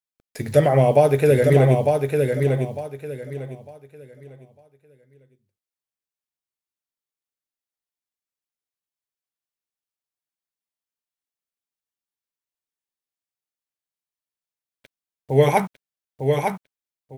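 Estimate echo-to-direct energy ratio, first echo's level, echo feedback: -4.0 dB, -4.5 dB, 26%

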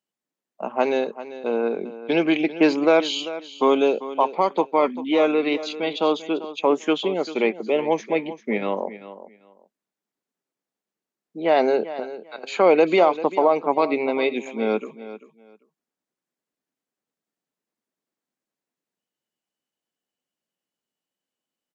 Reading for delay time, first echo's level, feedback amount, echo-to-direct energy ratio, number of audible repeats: 0.393 s, -14.5 dB, 19%, -14.5 dB, 2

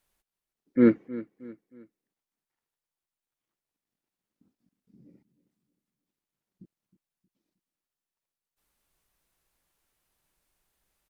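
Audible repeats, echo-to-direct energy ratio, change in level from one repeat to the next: 3, -16.5 dB, -8.0 dB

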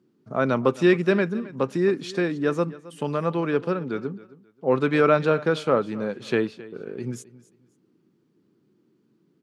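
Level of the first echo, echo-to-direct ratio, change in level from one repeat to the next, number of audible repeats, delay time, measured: -19.0 dB, -18.5 dB, -11.5 dB, 2, 0.267 s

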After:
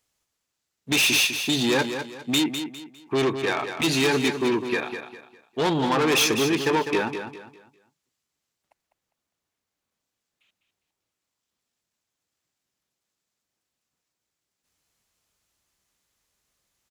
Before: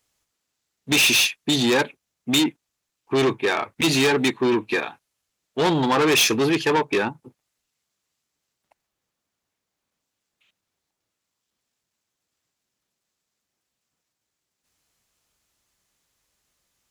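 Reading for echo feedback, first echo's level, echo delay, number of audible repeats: 32%, -8.5 dB, 0.202 s, 3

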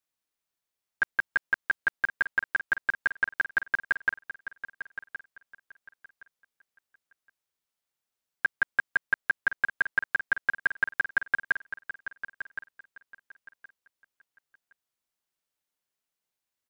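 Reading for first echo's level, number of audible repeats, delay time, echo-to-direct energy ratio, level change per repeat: -12.0 dB, 2, 1.068 s, -12.0 dB, -13.0 dB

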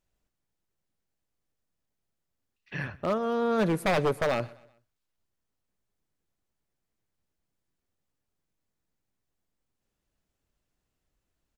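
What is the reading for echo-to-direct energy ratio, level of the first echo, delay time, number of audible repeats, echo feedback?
-22.0 dB, -23.0 dB, 0.126 s, 2, 44%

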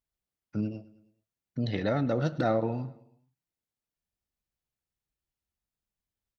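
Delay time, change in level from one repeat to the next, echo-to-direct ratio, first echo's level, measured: 0.107 s, -5.5 dB, -18.5 dB, -20.0 dB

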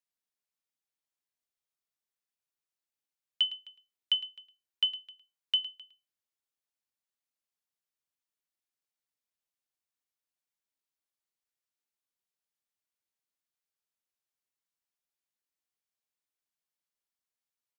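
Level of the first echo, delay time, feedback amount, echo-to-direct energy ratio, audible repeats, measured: -15.0 dB, 0.109 s, no steady repeat, -15.0 dB, 1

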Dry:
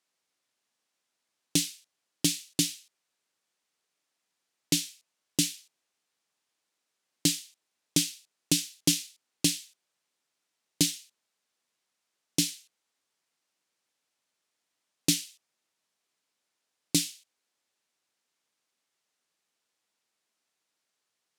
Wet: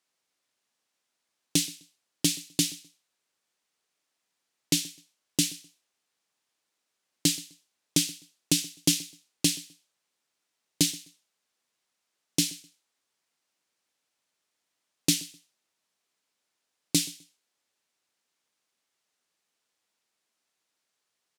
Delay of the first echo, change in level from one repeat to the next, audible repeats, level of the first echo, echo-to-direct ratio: 0.128 s, -12.5 dB, 2, -22.0 dB, -22.0 dB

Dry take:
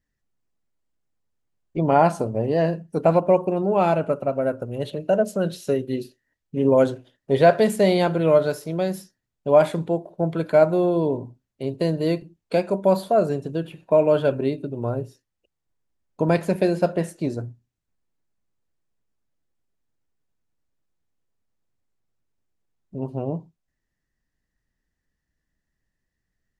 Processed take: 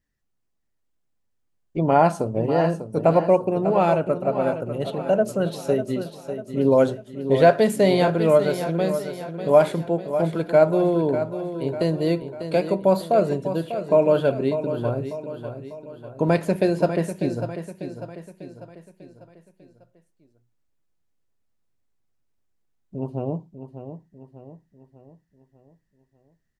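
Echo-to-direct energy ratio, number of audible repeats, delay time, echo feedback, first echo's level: -9.0 dB, 4, 0.596 s, 48%, -10.0 dB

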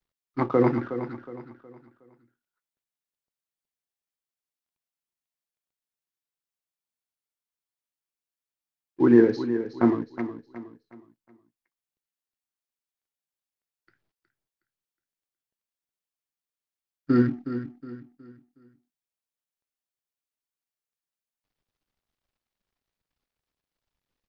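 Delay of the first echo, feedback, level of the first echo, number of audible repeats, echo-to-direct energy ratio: 0.366 s, 36%, -11.0 dB, 3, -10.5 dB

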